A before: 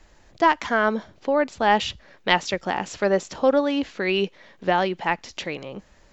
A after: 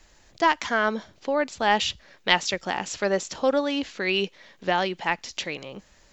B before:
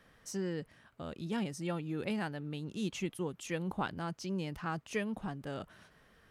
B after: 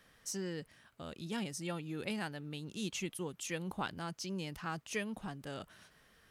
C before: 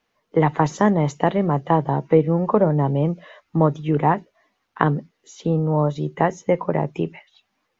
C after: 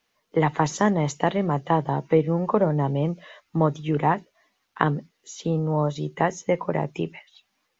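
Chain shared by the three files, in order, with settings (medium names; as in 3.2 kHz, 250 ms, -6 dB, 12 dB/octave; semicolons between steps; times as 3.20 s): treble shelf 2.5 kHz +9.5 dB; trim -4 dB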